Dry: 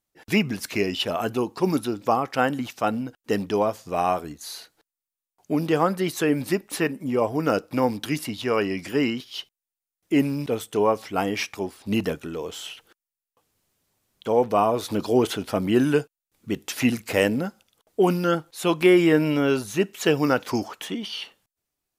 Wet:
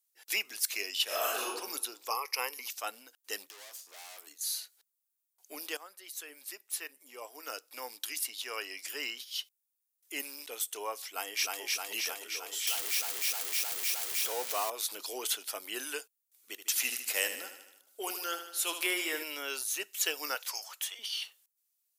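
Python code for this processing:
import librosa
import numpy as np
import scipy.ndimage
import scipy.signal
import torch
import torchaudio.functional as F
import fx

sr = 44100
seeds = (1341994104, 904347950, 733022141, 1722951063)

y = fx.reverb_throw(x, sr, start_s=1.04, length_s=0.47, rt60_s=0.92, drr_db=-8.0)
y = fx.ripple_eq(y, sr, per_octave=0.84, db=16, at=(2.1, 2.68))
y = fx.tube_stage(y, sr, drive_db=37.0, bias=0.55, at=(3.47, 4.27))
y = fx.echo_throw(y, sr, start_s=11.07, length_s=0.54, ms=310, feedback_pct=75, wet_db=-1.5)
y = fx.zero_step(y, sr, step_db=-26.0, at=(12.67, 14.7))
y = fx.echo_feedback(y, sr, ms=76, feedback_pct=58, wet_db=-9.5, at=(16.57, 19.22), fade=0.02)
y = fx.steep_highpass(y, sr, hz=490.0, slope=36, at=(20.35, 20.99))
y = fx.edit(y, sr, fx.fade_in_from(start_s=5.77, length_s=3.26, floor_db=-15.5), tone=tone)
y = scipy.signal.sosfilt(scipy.signal.butter(4, 320.0, 'highpass', fs=sr, output='sos'), y)
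y = np.diff(y, prepend=0.0)
y = F.gain(torch.from_numpy(y), 3.5).numpy()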